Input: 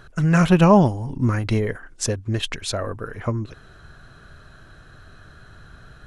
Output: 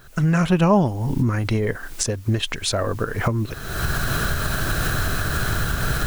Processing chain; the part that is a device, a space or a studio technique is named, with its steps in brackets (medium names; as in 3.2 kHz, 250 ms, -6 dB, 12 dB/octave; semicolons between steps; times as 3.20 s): cheap recorder with automatic gain (white noise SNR 34 dB; recorder AGC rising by 44 dB/s); trim -3 dB